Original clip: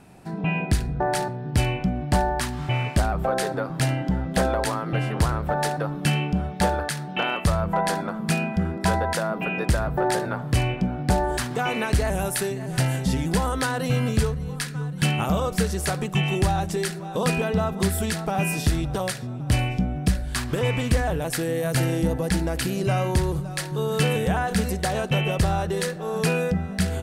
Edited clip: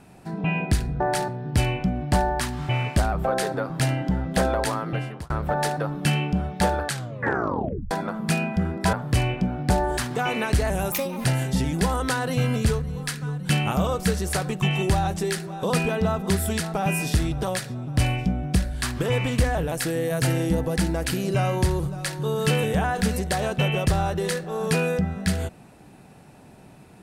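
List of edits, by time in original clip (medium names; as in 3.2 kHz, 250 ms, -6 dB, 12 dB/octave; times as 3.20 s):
4.83–5.30 s: fade out
6.87 s: tape stop 1.04 s
8.93–10.33 s: delete
12.32–12.77 s: speed 139%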